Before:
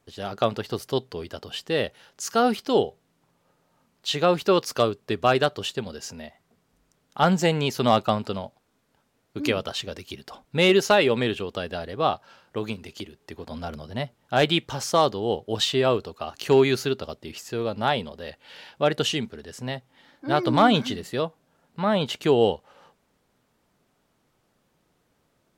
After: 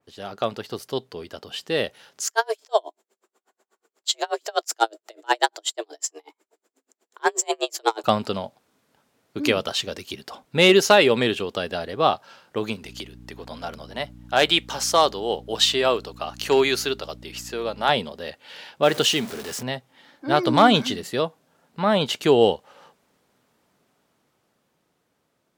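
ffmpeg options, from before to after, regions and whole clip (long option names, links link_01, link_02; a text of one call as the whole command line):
ffmpeg -i in.wav -filter_complex "[0:a]asettb=1/sr,asplit=3[link_01][link_02][link_03];[link_01]atrim=end=2.274[link_04];[link_02]atrim=start=2.27:end=8.04,asetpts=PTS-STARTPTS,afade=type=in:duration=0.004:curve=qsin,afade=type=out:start_time=5.766:duration=0.004:curve=qsin,equalizer=frequency=7100:width_type=o:width=0.23:gain=13,afreqshift=220,aeval=exprs='val(0)*pow(10,-38*(0.5-0.5*cos(2*PI*8.2*n/s))/20)':channel_layout=same[link_05];[link_03]atrim=start=8.036[link_06];[link_04][link_05]acrossfade=duration=0.004:curve1=hsin:curve2=qsin[link_07];[link_07][link_06]acrossfade=duration=0.004:curve1=qsin:curve2=hsin,asettb=1/sr,asplit=3[link_08][link_09][link_10];[link_08]atrim=end=12.844[link_11];[link_09]atrim=start=12.84:end=17.89,asetpts=PTS-STARTPTS,afade=type=in:duration=0.004:curve=qsin,afade=type=out:start_time=5.046:duration=0.004:curve=qsin,highpass=frequency=520:poles=1,aeval=exprs='val(0)+0.00891*(sin(2*PI*60*n/s)+sin(2*PI*2*60*n/s)/2+sin(2*PI*3*60*n/s)/3+sin(2*PI*4*60*n/s)/4+sin(2*PI*5*60*n/s)/5)':channel_layout=same[link_12];[link_10]atrim=start=17.886[link_13];[link_11][link_12]acrossfade=duration=0.004:curve1=hsin:curve2=qsin[link_14];[link_14][link_13]acrossfade=duration=0.004:curve1=qsin:curve2=hsin,asettb=1/sr,asplit=3[link_15][link_16][link_17];[link_15]atrim=end=18.834[link_18];[link_16]atrim=start=18.83:end=19.63,asetpts=PTS-STARTPTS,afade=type=in:duration=0.004:curve=qsin,afade=type=out:start_time=0.796:duration=0.004:curve=qsin,aeval=exprs='val(0)+0.5*0.02*sgn(val(0))':channel_layout=same,lowshelf=frequency=82:gain=-11.5[link_19];[link_17]atrim=start=19.626[link_20];[link_18][link_19]acrossfade=duration=0.004:curve1=hsin:curve2=qsin[link_21];[link_21][link_20]acrossfade=duration=0.004:curve1=qsin:curve2=hsin,dynaudnorm=framelen=280:gausssize=13:maxgain=9dB,highpass=frequency=160:poles=1,adynamicequalizer=threshold=0.0355:dfrequency=3300:dqfactor=0.7:tfrequency=3300:tqfactor=0.7:attack=5:release=100:ratio=0.375:range=1.5:mode=boostabove:tftype=highshelf,volume=-2dB" out.wav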